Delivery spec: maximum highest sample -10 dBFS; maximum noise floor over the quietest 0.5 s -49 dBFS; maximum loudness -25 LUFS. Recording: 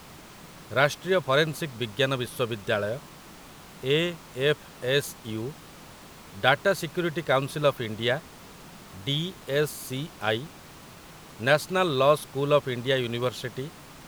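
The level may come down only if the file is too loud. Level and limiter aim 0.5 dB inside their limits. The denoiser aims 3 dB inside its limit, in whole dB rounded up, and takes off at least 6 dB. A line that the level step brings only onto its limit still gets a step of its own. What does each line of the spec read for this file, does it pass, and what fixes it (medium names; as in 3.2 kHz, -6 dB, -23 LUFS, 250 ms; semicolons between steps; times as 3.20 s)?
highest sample -4.5 dBFS: fail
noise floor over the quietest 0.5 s -47 dBFS: fail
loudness -26.5 LUFS: pass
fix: noise reduction 6 dB, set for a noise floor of -47 dBFS; peak limiter -10.5 dBFS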